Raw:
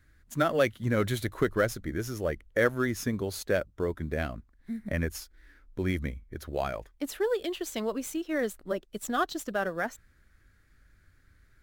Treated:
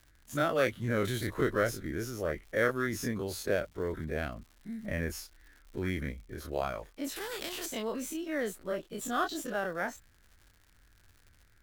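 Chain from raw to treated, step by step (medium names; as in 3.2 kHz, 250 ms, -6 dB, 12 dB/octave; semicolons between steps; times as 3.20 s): every event in the spectrogram widened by 60 ms; crackle 150 per s -41 dBFS; 7.16–7.66 s: spectrum-flattening compressor 2:1; trim -6.5 dB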